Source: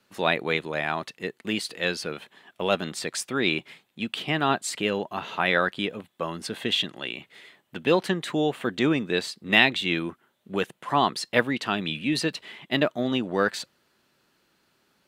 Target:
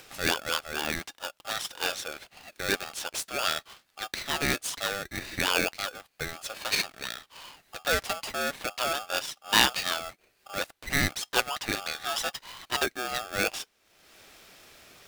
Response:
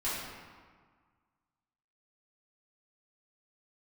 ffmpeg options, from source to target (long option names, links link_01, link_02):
-af "lowshelf=frequency=340:gain=-11,acompressor=mode=upward:threshold=-35dB:ratio=2.5,aeval=exprs='val(0)*sgn(sin(2*PI*990*n/s))':channel_layout=same,volume=-2dB"